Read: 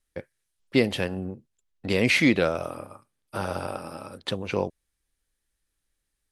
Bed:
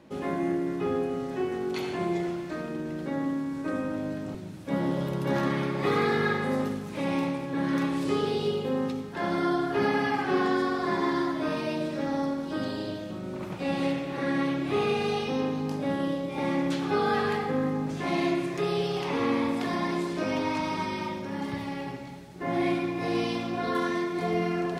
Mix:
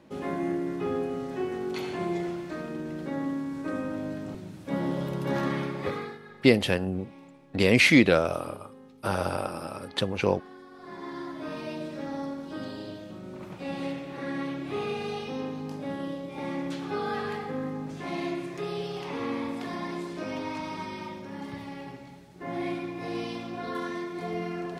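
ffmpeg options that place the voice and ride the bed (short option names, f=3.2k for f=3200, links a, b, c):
-filter_complex "[0:a]adelay=5700,volume=2dB[a];[1:a]volume=15dB,afade=t=out:st=5.56:d=0.63:silence=0.0944061,afade=t=in:st=10.7:d=0.97:silence=0.149624[b];[a][b]amix=inputs=2:normalize=0"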